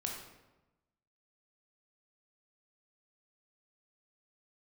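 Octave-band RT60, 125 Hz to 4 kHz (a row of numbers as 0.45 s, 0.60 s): 1.3 s, 1.2 s, 1.1 s, 1.0 s, 0.85 s, 0.70 s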